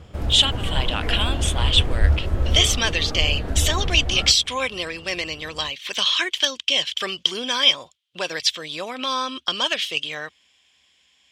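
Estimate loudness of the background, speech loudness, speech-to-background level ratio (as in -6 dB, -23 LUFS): -26.0 LUFS, -21.0 LUFS, 5.0 dB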